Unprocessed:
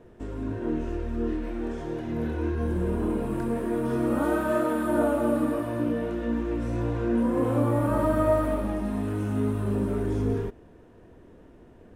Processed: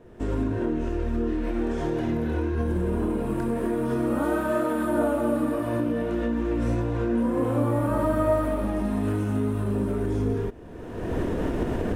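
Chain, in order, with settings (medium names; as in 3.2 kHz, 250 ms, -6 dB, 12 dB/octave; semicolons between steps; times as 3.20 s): recorder AGC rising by 32 dB/s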